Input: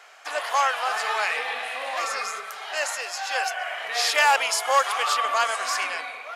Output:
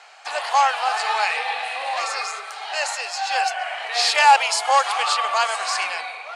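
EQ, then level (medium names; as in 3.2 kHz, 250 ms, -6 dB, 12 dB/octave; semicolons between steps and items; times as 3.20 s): cabinet simulation 380–9800 Hz, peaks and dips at 820 Hz +9 dB, 2.6 kHz +4 dB, 4.3 kHz +8 dB, 8.5 kHz +5 dB; 0.0 dB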